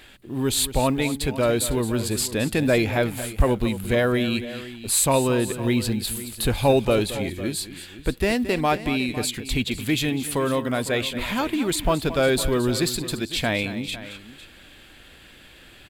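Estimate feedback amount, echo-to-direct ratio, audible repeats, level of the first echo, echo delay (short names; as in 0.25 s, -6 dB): no steady repeat, -11.5 dB, 2, -13.5 dB, 0.222 s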